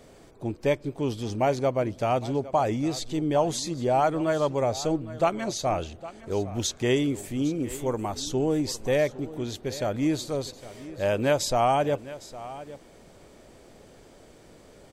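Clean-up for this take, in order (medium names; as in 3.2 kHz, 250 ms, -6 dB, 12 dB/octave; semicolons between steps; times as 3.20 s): inverse comb 809 ms -16.5 dB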